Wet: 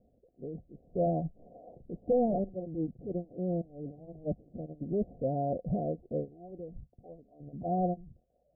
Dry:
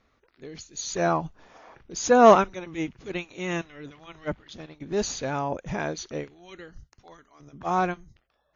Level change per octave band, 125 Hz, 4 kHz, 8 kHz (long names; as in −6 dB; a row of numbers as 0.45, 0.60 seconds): 0.0 dB, below −40 dB, can't be measured